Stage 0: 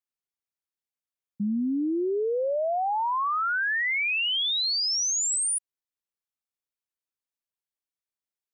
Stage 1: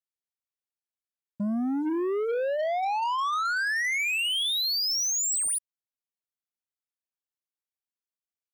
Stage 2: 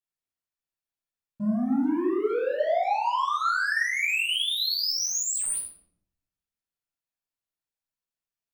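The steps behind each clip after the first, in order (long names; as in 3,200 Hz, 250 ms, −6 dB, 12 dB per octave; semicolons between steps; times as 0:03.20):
hum removal 147.6 Hz, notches 23; leveller curve on the samples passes 2; level −3.5 dB
convolution reverb RT60 0.70 s, pre-delay 8 ms, DRR −6 dB; level −8 dB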